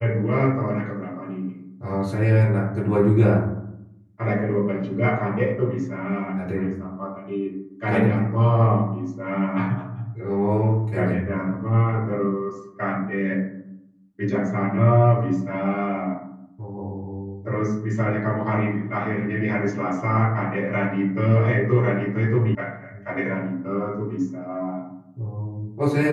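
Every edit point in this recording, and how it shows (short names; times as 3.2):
22.55 sound cut off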